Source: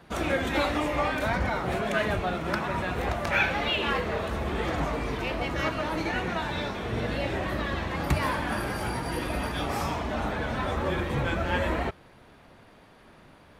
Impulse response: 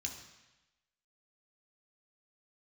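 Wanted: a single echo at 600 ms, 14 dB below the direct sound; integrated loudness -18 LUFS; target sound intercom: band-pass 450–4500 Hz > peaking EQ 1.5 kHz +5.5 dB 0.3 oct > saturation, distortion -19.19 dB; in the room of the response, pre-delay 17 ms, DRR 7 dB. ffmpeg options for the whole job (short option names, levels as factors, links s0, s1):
-filter_complex "[0:a]aecho=1:1:600:0.2,asplit=2[s0][s1];[1:a]atrim=start_sample=2205,adelay=17[s2];[s1][s2]afir=irnorm=-1:irlink=0,volume=0.501[s3];[s0][s3]amix=inputs=2:normalize=0,highpass=450,lowpass=4500,equalizer=f=1500:t=o:w=0.3:g=5.5,asoftclip=threshold=0.126,volume=3.76"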